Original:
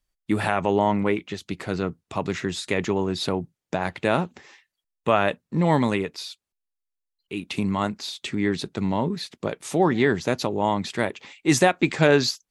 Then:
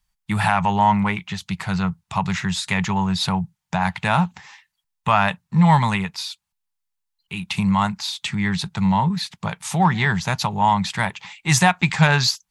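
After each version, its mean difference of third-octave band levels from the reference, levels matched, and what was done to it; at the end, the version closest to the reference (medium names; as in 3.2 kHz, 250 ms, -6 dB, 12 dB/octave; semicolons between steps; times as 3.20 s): 4.5 dB: FFT filter 190 Hz 0 dB, 270 Hz -24 dB, 540 Hz -19 dB, 880 Hz +1 dB, 1.2 kHz -4 dB; in parallel at -6.5 dB: saturation -19.5 dBFS, distortion -15 dB; on the sum: bass shelf 83 Hz -5.5 dB; trim +6.5 dB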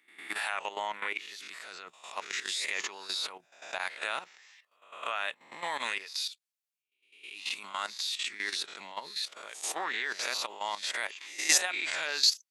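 12.5 dB: reverse spectral sustain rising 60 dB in 0.52 s; Bessel high-pass 1.9 kHz, order 2; level held to a coarse grid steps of 12 dB; trim +2.5 dB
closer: first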